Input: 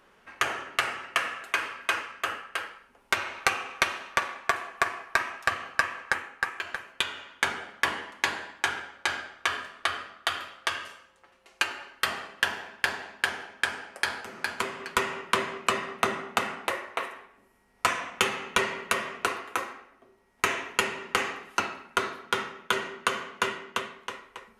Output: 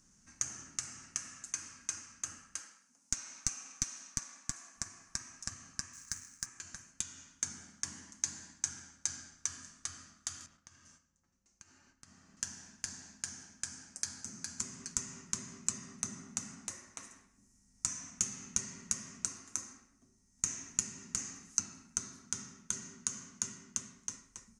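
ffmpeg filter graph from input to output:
-filter_complex "[0:a]asettb=1/sr,asplit=3[a][b][c];[a]atrim=end=2.594[d];[b]atrim=start=2.59:end=4.76,asetpts=PTS-STARTPTS,afade=t=in:d=0.004:c=qsin,afade=t=out:st=2.166:d=0.004:c=qsin,highpass=300,bandreject=f=380:w=5.4,aeval=exprs='clip(val(0),-1,0.0891)':c=same[e];[c]atrim=start=4.756[f];[d][e]acrossfade=d=0.004:c1=hsin:c2=qsin[g];[g][f]acrossfade=d=0.004:c1=qsin:c2=hsin,asettb=1/sr,asplit=3[h][i][j];[h]atrim=end=5.934[k];[i]atrim=start=5.93:end=6.46,asetpts=PTS-STARTPTS,afade=t=in:d=0.004:c=qsin,afade=t=out:st=0.526:d=0.004:c=qsin,asuperstop=centerf=720:order=4:qfactor=3.4,equalizer=f=460:w=0.71:g=-7,acrusher=bits=2:mode=log:mix=0:aa=0.000001[l];[j]atrim=start=6.456[m];[k][l]acrossfade=d=0.004:c1=hsin:c2=qsin[n];[n][m]acrossfade=d=0.004:c1=qsin:c2=hsin,asettb=1/sr,asplit=3[o][p][q];[o]atrim=end=10.464[r];[p]atrim=start=10.46:end=12.37,asetpts=PTS-STARTPTS,afade=t=in:d=0.004:c=qsin,afade=t=out:st=1.906:d=0.004:c=qsin,agate=range=-6dB:threshold=-51dB:ratio=16:release=100:detection=peak,lowpass=f=1.9k:p=1,acompressor=threshold=-45dB:ratio=12:attack=3.2:release=140:knee=1:detection=peak[s];[q]atrim=start=12.366[t];[r][s]acrossfade=d=0.004:c1=hsin:c2=qsin[u];[u][t]acrossfade=d=0.004:c1=qsin:c2=hsin,equalizer=f=13k:w=2.7:g=-13,acompressor=threshold=-33dB:ratio=2.5,firequalizer=gain_entry='entry(160,0);entry(270,-5);entry(420,-25);entry(1500,-19);entry(3200,-20);entry(6200,14);entry(12000,-8)':delay=0.05:min_phase=1,volume=2dB"

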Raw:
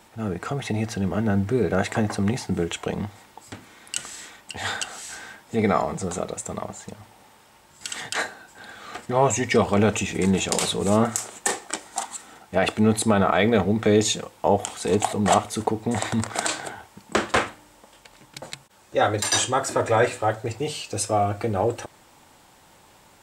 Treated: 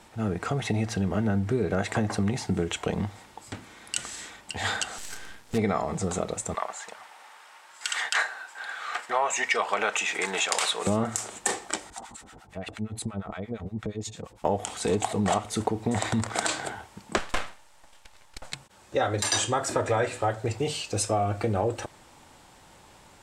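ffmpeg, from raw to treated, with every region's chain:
-filter_complex "[0:a]asettb=1/sr,asplit=3[a][b][c];[a]atrim=end=4.984[d];[b]atrim=start=4.98:end=5.58,asetpts=PTS-STARTPTS,afade=t=in:d=0.004:c=qsin,afade=t=out:st=0.596:d=0.004:c=qsin,equalizer=f=750:t=o:w=0.41:g=-4,acrusher=bits=6:dc=4:mix=0:aa=0.000001[e];[c]atrim=start=5.576[f];[d][e]acrossfade=d=0.004:c1=hsin:c2=qsin[g];[g][f]acrossfade=d=0.004:c1=qsin:c2=hsin,asettb=1/sr,asplit=3[h][i][j];[h]atrim=end=6.544[k];[i]atrim=start=6.54:end=10.87,asetpts=PTS-STARTPTS,afade=t=in:d=0.004:c=qsin,afade=t=out:st=4.326:d=0.004:c=qsin,highpass=690,equalizer=f=1.5k:t=o:w=2:g=7.5[l];[j]atrim=start=10.866[m];[k][l]acrossfade=d=0.004:c1=hsin:c2=qsin[n];[n][m]acrossfade=d=0.004:c1=qsin:c2=hsin,asettb=1/sr,asplit=3[o][p][q];[o]atrim=end=11.904[r];[p]atrim=start=11.9:end=14.45,asetpts=PTS-STARTPTS,afade=t=in:d=0.004:c=qsin,afade=t=out:st=2.546:d=0.004:c=qsin,lowshelf=f=190:g=11.5,acompressor=threshold=-29dB:ratio=5:attack=3.2:release=140:knee=1:detection=peak,acrossover=split=860[s][t];[s]aeval=exprs='val(0)*(1-1/2+1/2*cos(2*PI*8.6*n/s))':c=same[u];[t]aeval=exprs='val(0)*(1-1/2-1/2*cos(2*PI*8.6*n/s))':c=same[v];[u][v]amix=inputs=2:normalize=0[w];[q]atrim=start=14.446[x];[r][w]acrossfade=d=0.004:c1=hsin:c2=qsin[y];[y][x]acrossfade=d=0.004:c1=qsin:c2=hsin,asettb=1/sr,asplit=3[z][aa][ab];[z]atrim=end=17.184[ac];[aa]atrim=start=17.18:end=18.52,asetpts=PTS-STARTPTS,afade=t=in:d=0.004:c=qsin,afade=t=out:st=1.336:d=0.004:c=qsin,highpass=f=580:w=0.5412,highpass=f=580:w=1.3066,aeval=exprs='max(val(0),0)':c=same[ad];[ab]atrim=start=18.516[ae];[ac][ad]acrossfade=d=0.004:c1=hsin:c2=qsin[af];[af][ae]acrossfade=d=0.004:c1=qsin:c2=hsin,lowpass=11k,lowshelf=f=63:g=7.5,acompressor=threshold=-22dB:ratio=4"

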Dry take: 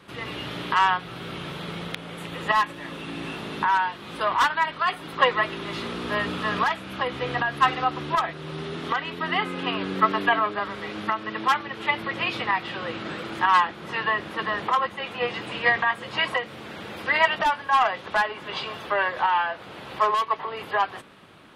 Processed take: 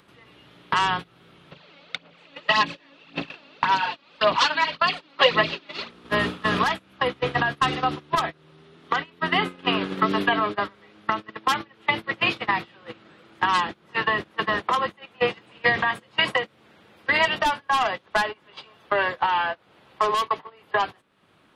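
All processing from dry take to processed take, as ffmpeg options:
-filter_complex "[0:a]asettb=1/sr,asplit=3[a][b][c];[a]atrim=end=1.514[d];[b]atrim=start=1.51:end=5.9,asetpts=PTS-STARTPTS,afade=t=in:d=0.004:c=qsin,afade=t=out:st=4.386:d=0.004:c=qsin,aphaser=in_gain=1:out_gain=1:delay=3.6:decay=0.58:speed=1.8:type=sinusoidal,highpass=110,equalizer=f=110:t=q:w=4:g=-10,equalizer=f=190:t=q:w=4:g=-6,equalizer=f=360:t=q:w=4:g=-8,equalizer=f=580:t=q:w=4:g=4,equalizer=f=2.6k:t=q:w=4:g=6,equalizer=f=4.4k:t=q:w=4:g=7,lowpass=f=6.2k:w=0.5412,lowpass=f=6.2k:w=1.3066[e];[c]atrim=start=5.896[f];[d][e]acrossfade=d=0.004:c1=hsin:c2=qsin[g];[g][f]acrossfade=d=0.004:c1=qsin:c2=hsin,acompressor=mode=upward:threshold=-29dB:ratio=2.5,agate=range=-25dB:threshold=-27dB:ratio=16:detection=peak,acrossover=split=450|3000[h][i][j];[i]acompressor=threshold=-27dB:ratio=6[k];[h][k][j]amix=inputs=3:normalize=0,volume=6dB"

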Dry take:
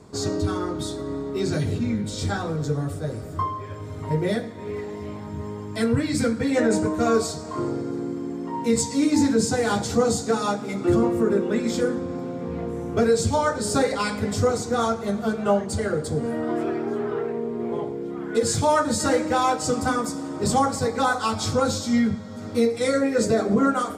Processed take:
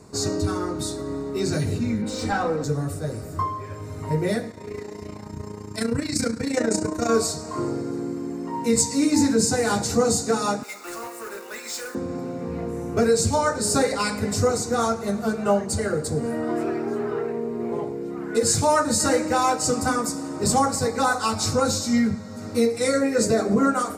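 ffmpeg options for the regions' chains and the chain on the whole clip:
-filter_complex "[0:a]asettb=1/sr,asplit=3[a][b][c];[a]atrim=end=2.024[d];[b]atrim=start=2.02:end=2.64,asetpts=PTS-STARTPTS,afade=t=in:d=0.004:c=qsin,afade=t=out:st=0.616:d=0.004:c=qsin,aecho=1:1:3.9:0.8,atrim=end_sample=27342,asplit=2[e][f];[f]highpass=f=720:p=1,volume=15dB,asoftclip=type=tanh:threshold=-13dB[g];[e][g]amix=inputs=2:normalize=0,lowpass=f=1k:p=1,volume=-6dB[h];[c]atrim=start=2.636[i];[d][h]acrossfade=d=0.004:c1=hsin:c2=qsin[j];[j][i]acrossfade=d=0.004:c1=qsin:c2=hsin,asettb=1/sr,asplit=3[k][l][m];[k]atrim=end=4.514[n];[l]atrim=start=4.51:end=7.1,asetpts=PTS-STARTPTS,afade=t=in:d=0.004:c=qsin,afade=t=out:st=2.586:d=0.004:c=qsin,equalizer=f=5.6k:w=1.3:g=5.5,tremolo=f=29:d=0.71[o];[m]atrim=start=7.096[p];[n][o]acrossfade=d=0.004:c1=hsin:c2=qsin[q];[q][p]acrossfade=d=0.004:c1=qsin:c2=hsin,asettb=1/sr,asplit=3[r][s][t];[r]atrim=end=10.634[u];[s]atrim=start=10.63:end=11.95,asetpts=PTS-STARTPTS,afade=t=in:d=0.004:c=qsin,afade=t=out:st=1.316:d=0.004:c=qsin,highpass=1k,asoftclip=type=hard:threshold=-30dB,acrusher=bits=3:mode=log:mix=0:aa=0.000001[v];[t]atrim=start=11.946[w];[u][v]acrossfade=d=0.004:c1=hsin:c2=qsin[x];[x][w]acrossfade=d=0.004:c1=qsin:c2=hsin,highshelf=f=5k:g=7.5,bandreject=f=3.3k:w=5.1"

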